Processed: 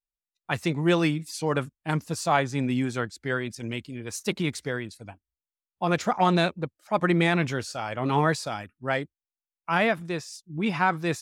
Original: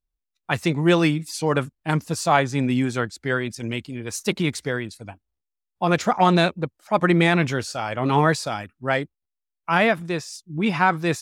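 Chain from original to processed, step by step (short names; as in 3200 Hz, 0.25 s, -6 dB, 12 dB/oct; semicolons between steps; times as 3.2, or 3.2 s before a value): spectral noise reduction 13 dB; gain -4.5 dB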